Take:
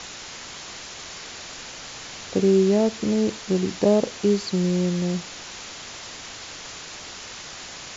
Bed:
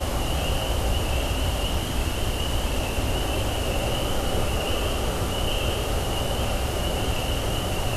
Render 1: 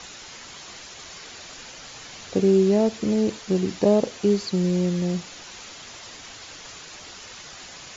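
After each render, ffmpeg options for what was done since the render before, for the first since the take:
-af "afftdn=nr=6:nf=-39"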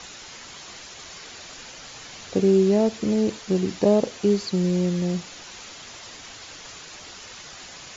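-af anull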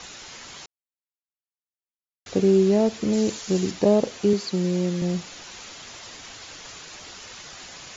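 -filter_complex "[0:a]asettb=1/sr,asplit=3[a][b][c];[a]atrim=end=3.134[d];[b]atrim=start=3.13:end=3.71,asetpts=PTS-STARTPTS,afade=t=in:d=0.004:c=qsin,afade=t=out:st=0.576:d=0.004:c=qsin,aemphasis=mode=production:type=50fm[e];[c]atrim=start=3.706[f];[d][e]acrossfade=d=0.004:c1=hsin:c2=qsin[g];[g][f]acrossfade=d=0.004:c1=qsin:c2=hsin,asettb=1/sr,asplit=3[h][i][j];[h]atrim=end=4.334[k];[i]atrim=start=4.33:end=5.02,asetpts=PTS-STARTPTS,afade=t=in:d=0.004:c=qsin,afade=t=out:st=0.686:d=0.004:c=qsin,highpass=160[l];[j]atrim=start=5.016[m];[k][l]acrossfade=d=0.004:c1=hsin:c2=qsin[n];[n][m]acrossfade=d=0.004:c1=qsin:c2=hsin,asplit=3[o][p][q];[o]atrim=end=0.66,asetpts=PTS-STARTPTS,afade=t=out:st=0.656:d=0.004:c=hsin[r];[p]atrim=start=0.66:end=2.26,asetpts=PTS-STARTPTS,volume=0[s];[q]atrim=start=2.26,asetpts=PTS-STARTPTS,afade=t=in:d=0.004:c=hsin[t];[r][s][t]concat=n=3:v=0:a=1"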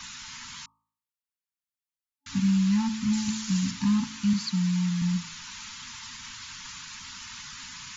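-af "bandreject=f=54.51:t=h:w=4,bandreject=f=109.02:t=h:w=4,bandreject=f=163.53:t=h:w=4,bandreject=f=218.04:t=h:w=4,bandreject=f=272.55:t=h:w=4,bandreject=f=327.06:t=h:w=4,bandreject=f=381.57:t=h:w=4,bandreject=f=436.08:t=h:w=4,bandreject=f=490.59:t=h:w=4,bandreject=f=545.1:t=h:w=4,bandreject=f=599.61:t=h:w=4,bandreject=f=654.12:t=h:w=4,bandreject=f=708.63:t=h:w=4,bandreject=f=763.14:t=h:w=4,bandreject=f=817.65:t=h:w=4,bandreject=f=872.16:t=h:w=4,bandreject=f=926.67:t=h:w=4,bandreject=f=981.18:t=h:w=4,bandreject=f=1.03569k:t=h:w=4,bandreject=f=1.0902k:t=h:w=4,bandreject=f=1.14471k:t=h:w=4,bandreject=f=1.19922k:t=h:w=4,bandreject=f=1.25373k:t=h:w=4,afftfilt=real='re*(1-between(b*sr/4096,270,860))':imag='im*(1-between(b*sr/4096,270,860))':win_size=4096:overlap=0.75"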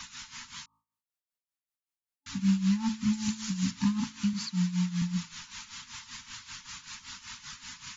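-af "tremolo=f=5.2:d=0.77"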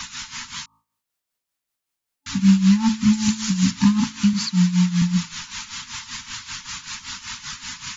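-af "volume=11dB"

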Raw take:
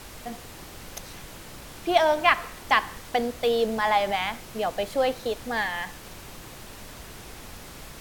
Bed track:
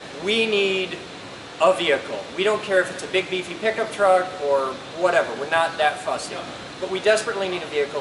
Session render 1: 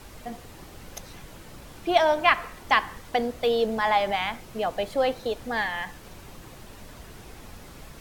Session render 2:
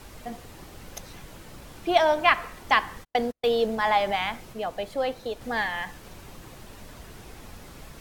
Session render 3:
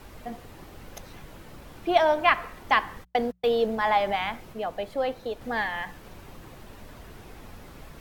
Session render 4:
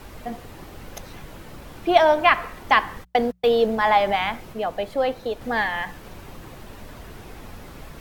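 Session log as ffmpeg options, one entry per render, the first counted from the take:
-af "afftdn=nr=6:nf=-44"
-filter_complex "[0:a]asettb=1/sr,asplit=3[a][b][c];[a]atrim=end=0.744[d];[b]atrim=start=0.74:end=1.67,asetpts=PTS-STARTPTS,afade=t=in:d=0.004:c=qsin,afade=t=out:st=0.926:d=0.004:c=qsin,acrusher=bits=7:mode=log:mix=0:aa=0.000001[e];[c]atrim=start=1.666[f];[d][e]acrossfade=d=0.004:c1=hsin:c2=qsin[g];[g][f]acrossfade=d=0.004:c1=qsin:c2=hsin,asplit=3[h][i][j];[h]afade=t=out:st=3.03:d=0.02[k];[i]agate=range=-47dB:threshold=-30dB:ratio=16:release=100:detection=peak,afade=t=in:st=3.03:d=0.02,afade=t=out:st=3.93:d=0.02[l];[j]afade=t=in:st=3.93:d=0.02[m];[k][l][m]amix=inputs=3:normalize=0,asplit=3[n][o][p];[n]atrim=end=4.532[q];[o]atrim=start=4.528:end=5.412,asetpts=PTS-STARTPTS,volume=-3.5dB[r];[p]atrim=start=5.408[s];[q][r]acrossfade=d=0.004:c1=hsin:c2=hsin[t];[t][s]acrossfade=d=0.004:c1=hsin:c2=hsin"
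-af "equalizer=f=7.7k:t=o:w=2.1:g=-6.5,bandreject=f=60:t=h:w=6,bandreject=f=120:t=h:w=6,bandreject=f=180:t=h:w=6"
-af "volume=5dB,alimiter=limit=-3dB:level=0:latency=1"

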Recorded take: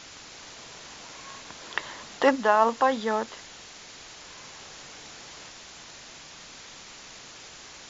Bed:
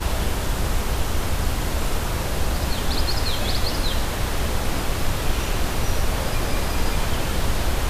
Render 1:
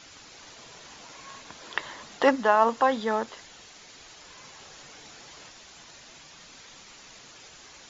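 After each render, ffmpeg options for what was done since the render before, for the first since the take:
-af "afftdn=nr=6:nf=-46"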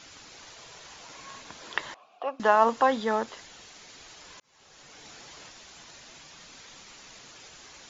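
-filter_complex "[0:a]asettb=1/sr,asplit=3[a][b][c];[a]atrim=end=0.444[d];[b]atrim=start=0.44:end=1.07,asetpts=PTS-STARTPTS,afade=t=in:d=0.004:c=qsin,afade=t=out:st=0.626:d=0.004:c=qsin,equalizer=f=240:w=1.5:g=-7[e];[c]atrim=start=1.066[f];[d][e]acrossfade=d=0.004:c1=hsin:c2=qsin[g];[g][f]acrossfade=d=0.004:c1=qsin:c2=hsin,asettb=1/sr,asplit=3[h][i][j];[h]atrim=end=1.944[k];[i]atrim=start=1.94:end=2.4,asetpts=PTS-STARTPTS,afade=t=in:d=0.004:c=qsin,afade=t=out:st=0.456:d=0.004:c=qsin,asplit=3[l][m][n];[l]bandpass=f=730:t=q:w=8,volume=0dB[o];[m]bandpass=f=1.09k:t=q:w=8,volume=-6dB[p];[n]bandpass=f=2.44k:t=q:w=8,volume=-9dB[q];[o][p][q]amix=inputs=3:normalize=0[r];[j]atrim=start=2.396[s];[k][r]acrossfade=d=0.004:c1=hsin:c2=qsin[t];[t][s]acrossfade=d=0.004:c1=qsin:c2=hsin,asplit=2[u][v];[u]atrim=end=4.4,asetpts=PTS-STARTPTS,afade=t=out:st=4.396:d=0.004:c=hsin[w];[v]atrim=start=4.4,asetpts=PTS-STARTPTS,afade=t=in:d=0.71[x];[w][x]concat=n=2:v=0:a=1"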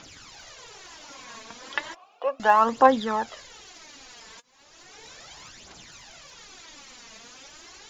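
-af "aphaser=in_gain=1:out_gain=1:delay=4.6:decay=0.6:speed=0.35:type=triangular"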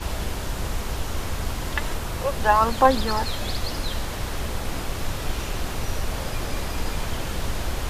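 -filter_complex "[1:a]volume=-5dB[a];[0:a][a]amix=inputs=2:normalize=0"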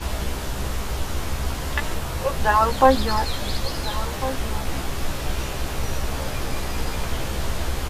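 -filter_complex "[0:a]asplit=2[a][b];[b]adelay=15,volume=-5dB[c];[a][c]amix=inputs=2:normalize=0,asplit=2[d][e];[e]adelay=1399,volume=-12dB,highshelf=f=4k:g=-31.5[f];[d][f]amix=inputs=2:normalize=0"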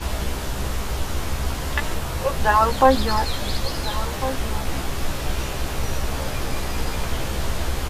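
-af "volume=1dB,alimiter=limit=-3dB:level=0:latency=1"

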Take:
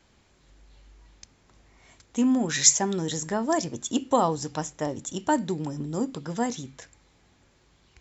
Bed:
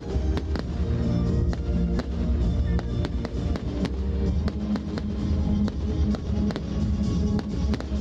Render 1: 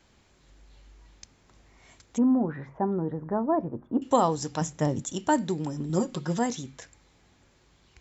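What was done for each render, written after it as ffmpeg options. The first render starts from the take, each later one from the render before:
-filter_complex "[0:a]asettb=1/sr,asplit=3[a][b][c];[a]atrim=end=2.184[d];[b]atrim=start=2.18:end=4.02,asetpts=PTS-STARTPTS,afade=t=in:d=0.004:c=qsin,afade=t=out:st=1.836:d=0.004:c=qsin,lowpass=f=1.2k:w=0.5412,lowpass=f=1.2k:w=1.3066[e];[c]atrim=start=4.016[f];[d][e]acrossfade=d=0.004:c1=hsin:c2=qsin[g];[g][f]acrossfade=d=0.004:c1=qsin:c2=hsin,asettb=1/sr,asplit=3[h][i][j];[h]atrim=end=4.614[k];[i]atrim=start=4.61:end=5.02,asetpts=PTS-STARTPTS,afade=t=in:d=0.004:c=qsin,afade=t=out:st=0.406:d=0.004:c=qsin,equalizer=f=150:w=1:g=10[l];[j]atrim=start=5.016[m];[k][l]acrossfade=d=0.004:c1=hsin:c2=qsin[n];[n][m]acrossfade=d=0.004:c1=qsin:c2=hsin,asettb=1/sr,asplit=3[o][p][q];[o]atrim=end=5.894[r];[p]atrim=start=5.89:end=6.39,asetpts=PTS-STARTPTS,afade=t=in:d=0.004:c=qsin,afade=t=out:st=0.496:d=0.004:c=qsin,aecho=1:1:5.5:0.94,atrim=end_sample=22050[s];[q]atrim=start=6.386[t];[r][s]acrossfade=d=0.004:c1=hsin:c2=qsin[u];[u][t]acrossfade=d=0.004:c1=qsin:c2=hsin"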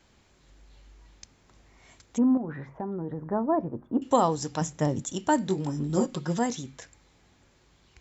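-filter_complex "[0:a]asettb=1/sr,asplit=3[a][b][c];[a]atrim=end=2.374[d];[b]atrim=start=2.37:end=3.32,asetpts=PTS-STARTPTS,afade=t=in:d=0.004:c=qsin,afade=t=out:st=0.946:d=0.004:c=qsin,acompressor=threshold=-29dB:ratio=6:attack=3.2:release=140:knee=1:detection=peak[e];[c]atrim=start=3.316[f];[d][e]acrossfade=d=0.004:c1=hsin:c2=qsin[g];[g][f]acrossfade=d=0.004:c1=qsin:c2=hsin,asettb=1/sr,asplit=3[h][i][j];[h]atrim=end=5.444[k];[i]atrim=start=5.44:end=6.06,asetpts=PTS-STARTPTS,afade=t=in:d=0.004:c=qsin,afade=t=out:st=0.616:d=0.004:c=qsin,asplit=2[l][m];[m]adelay=21,volume=-6dB[n];[l][n]amix=inputs=2:normalize=0,atrim=end_sample=27342[o];[j]atrim=start=6.056[p];[k][o]acrossfade=d=0.004:c1=hsin:c2=qsin[q];[q][p]acrossfade=d=0.004:c1=qsin:c2=hsin"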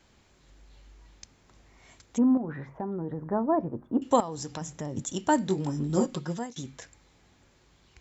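-filter_complex "[0:a]asettb=1/sr,asplit=3[a][b][c];[a]atrim=end=4.204[d];[b]atrim=start=4.2:end=4.97,asetpts=PTS-STARTPTS,afade=t=in:d=0.004:c=qsin,afade=t=out:st=0.766:d=0.004:c=qsin,acompressor=threshold=-32dB:ratio=5:attack=3.2:release=140:knee=1:detection=peak[e];[c]atrim=start=4.966[f];[d][e]acrossfade=d=0.004:c1=hsin:c2=qsin[g];[g][f]acrossfade=d=0.004:c1=qsin:c2=hsin,asplit=2[h][i];[h]atrim=end=6.56,asetpts=PTS-STARTPTS,afade=t=out:st=6.14:d=0.42:silence=0.0794328[j];[i]atrim=start=6.56,asetpts=PTS-STARTPTS,afade=t=in:d=0.004:c=hsin:silence=0.0794328[k];[j][k]concat=n=2:v=0:a=1"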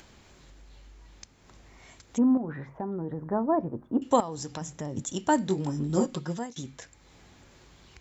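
-af "acompressor=mode=upward:threshold=-46dB:ratio=2.5"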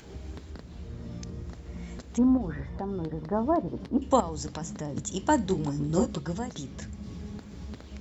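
-filter_complex "[1:a]volume=-15.5dB[a];[0:a][a]amix=inputs=2:normalize=0"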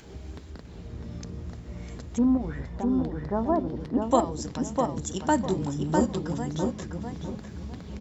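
-filter_complex "[0:a]asplit=2[a][b];[b]adelay=652,lowpass=f=2.4k:p=1,volume=-3.5dB,asplit=2[c][d];[d]adelay=652,lowpass=f=2.4k:p=1,volume=0.3,asplit=2[e][f];[f]adelay=652,lowpass=f=2.4k:p=1,volume=0.3,asplit=2[g][h];[h]adelay=652,lowpass=f=2.4k:p=1,volume=0.3[i];[a][c][e][g][i]amix=inputs=5:normalize=0"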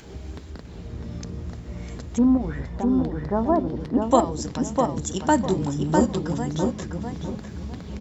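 -af "volume=4dB"

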